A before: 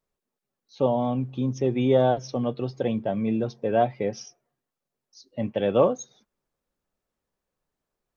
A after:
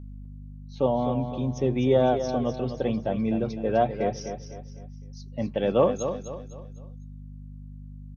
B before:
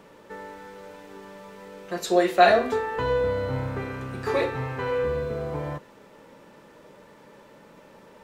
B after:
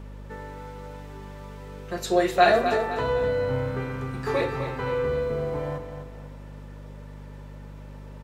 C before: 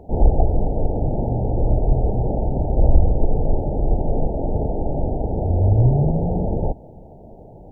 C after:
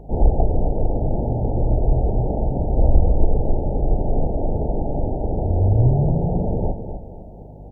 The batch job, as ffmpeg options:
-af "aeval=exprs='val(0)+0.0126*(sin(2*PI*50*n/s)+sin(2*PI*2*50*n/s)/2+sin(2*PI*3*50*n/s)/3+sin(2*PI*4*50*n/s)/4+sin(2*PI*5*50*n/s)/5)':c=same,aecho=1:1:253|506|759|1012:0.355|0.135|0.0512|0.0195,volume=0.891"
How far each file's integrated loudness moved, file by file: -1.0 LU, -0.5 LU, -0.5 LU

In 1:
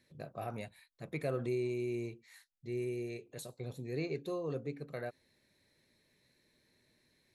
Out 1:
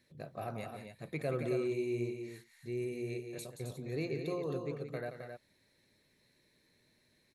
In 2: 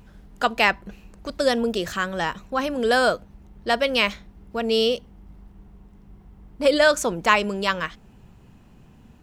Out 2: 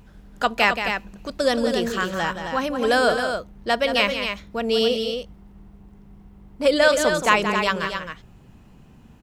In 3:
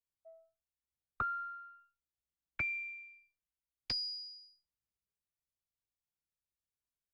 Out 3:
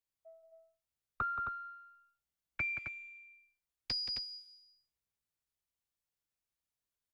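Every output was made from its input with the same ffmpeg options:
-af "aecho=1:1:174.9|265.3:0.355|0.447"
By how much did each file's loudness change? +0.5 LU, +0.5 LU, +0.5 LU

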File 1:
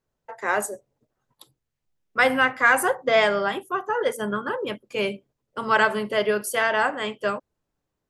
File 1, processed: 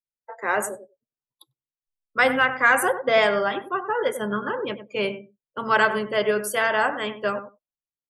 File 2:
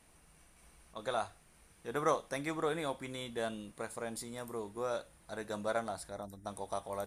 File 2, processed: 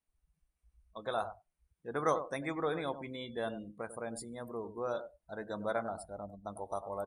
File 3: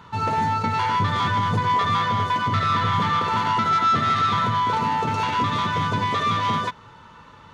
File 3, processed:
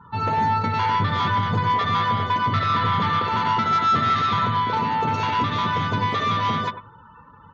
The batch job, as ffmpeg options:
-filter_complex "[0:a]asplit=2[s0][s1];[s1]adelay=97,lowpass=f=1700:p=1,volume=0.316,asplit=2[s2][s3];[s3]adelay=97,lowpass=f=1700:p=1,volume=0.16[s4];[s2][s4]amix=inputs=2:normalize=0[s5];[s0][s5]amix=inputs=2:normalize=0,afftdn=nr=28:nf=-46"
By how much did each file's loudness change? 0.0 LU, 0.0 LU, 0.0 LU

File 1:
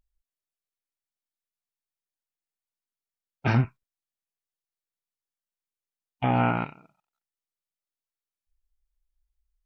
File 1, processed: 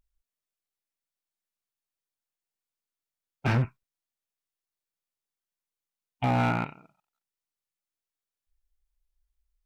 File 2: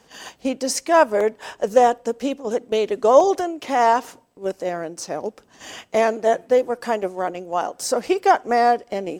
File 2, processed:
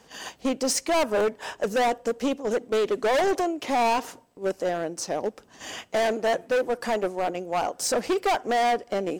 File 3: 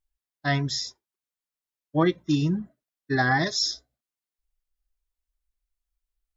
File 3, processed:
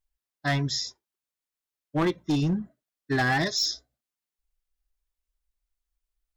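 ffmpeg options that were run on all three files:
-af "asoftclip=type=hard:threshold=0.1"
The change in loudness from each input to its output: -2.0 LU, -5.0 LU, -1.5 LU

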